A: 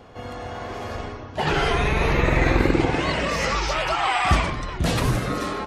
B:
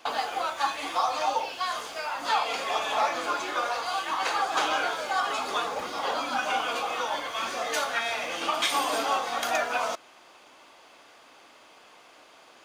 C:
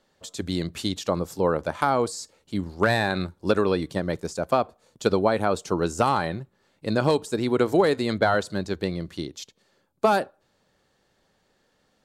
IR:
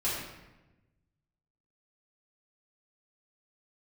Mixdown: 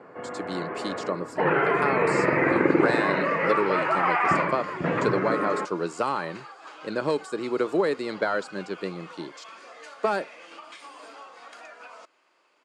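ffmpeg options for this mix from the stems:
-filter_complex "[0:a]lowpass=f=2100:w=0.5412,lowpass=f=2100:w=1.3066,volume=1.26[s0];[1:a]acompressor=threshold=0.0398:ratio=6,adelay=2100,volume=0.282[s1];[2:a]volume=0.75[s2];[s0][s1][s2]amix=inputs=3:normalize=0,highpass=f=180:w=0.5412,highpass=f=180:w=1.3066,equalizer=f=230:t=q:w=4:g=-8,equalizer=f=750:t=q:w=4:g=-7,equalizer=f=3500:t=q:w=4:g=-8,equalizer=f=6100:t=q:w=4:g=-8,lowpass=f=8200:w=0.5412,lowpass=f=8200:w=1.3066"

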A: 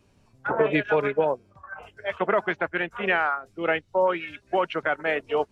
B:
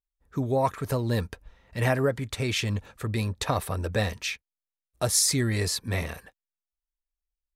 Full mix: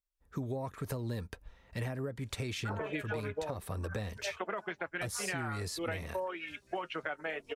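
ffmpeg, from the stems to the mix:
-filter_complex "[0:a]highshelf=f=4900:g=10.5,flanger=delay=1.8:depth=5.2:regen=-52:speed=0.52:shape=sinusoidal,adelay=2200,volume=0.841[s0];[1:a]acrossover=split=430[s1][s2];[s2]acompressor=threshold=0.0251:ratio=3[s3];[s1][s3]amix=inputs=2:normalize=0,volume=0.75[s4];[s0][s4]amix=inputs=2:normalize=0,acompressor=threshold=0.02:ratio=6"

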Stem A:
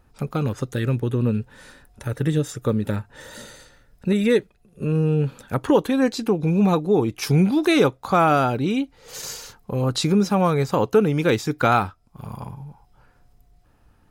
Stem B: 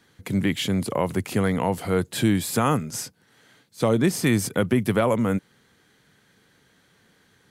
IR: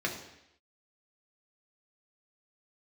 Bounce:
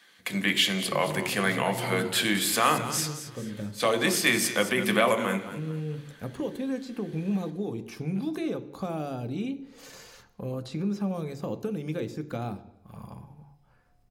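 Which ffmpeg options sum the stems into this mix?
-filter_complex "[0:a]acrossover=split=600|3300[s0][s1][s2];[s0]acompressor=threshold=0.0891:ratio=4[s3];[s1]acompressor=threshold=0.00891:ratio=4[s4];[s2]acompressor=threshold=0.00631:ratio=4[s5];[s3][s4][s5]amix=inputs=3:normalize=0,adelay=700,volume=0.335,asplit=2[s6][s7];[s7]volume=0.251[s8];[1:a]highpass=f=1100:p=1,equalizer=f=3300:w=1.5:g=3.5,volume=1,asplit=4[s9][s10][s11][s12];[s10]volume=0.501[s13];[s11]volume=0.316[s14];[s12]apad=whole_len=652974[s15];[s6][s15]sidechaincompress=threshold=0.0282:ratio=8:attack=16:release=1330[s16];[2:a]atrim=start_sample=2205[s17];[s8][s13]amix=inputs=2:normalize=0[s18];[s18][s17]afir=irnorm=-1:irlink=0[s19];[s14]aecho=0:1:219|438|657|876|1095:1|0.34|0.116|0.0393|0.0134[s20];[s16][s9][s19][s20]amix=inputs=4:normalize=0"

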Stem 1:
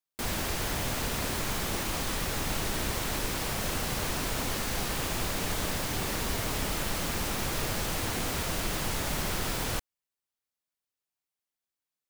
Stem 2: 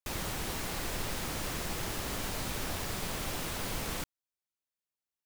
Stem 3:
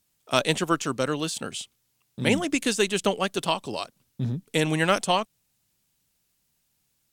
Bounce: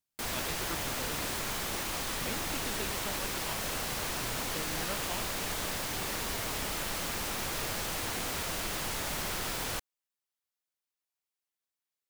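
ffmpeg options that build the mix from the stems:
-filter_complex "[0:a]lowshelf=f=360:g=-7,volume=0.841[s0];[2:a]volume=0.112[s1];[s0][s1]amix=inputs=2:normalize=0"

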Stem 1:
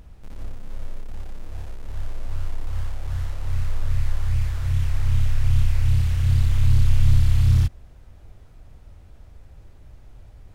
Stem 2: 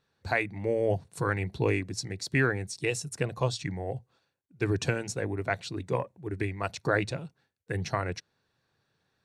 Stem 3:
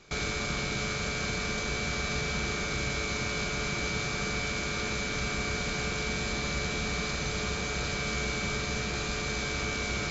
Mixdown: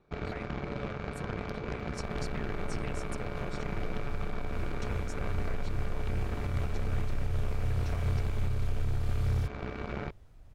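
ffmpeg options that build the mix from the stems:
-filter_complex "[0:a]adelay=1800,volume=0.398[s0];[1:a]acompressor=threshold=0.02:ratio=6,volume=0.376[s1];[2:a]lowpass=1100,aeval=exprs='0.075*(cos(1*acos(clip(val(0)/0.075,-1,1)))-cos(1*PI/2))+0.0211*(cos(6*acos(clip(val(0)/0.075,-1,1)))-cos(6*PI/2))+0.00531*(cos(7*acos(clip(val(0)/0.075,-1,1)))-cos(7*PI/2))+0.0133*(cos(8*acos(clip(val(0)/0.075,-1,1)))-cos(8*PI/2))':c=same,volume=0.794[s2];[s0][s1][s2]amix=inputs=3:normalize=0,alimiter=limit=0.0891:level=0:latency=1:release=374"

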